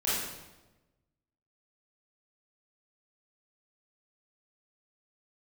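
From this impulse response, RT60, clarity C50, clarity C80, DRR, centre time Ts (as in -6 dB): 1.1 s, -2.0 dB, 2.0 dB, -10.0 dB, 84 ms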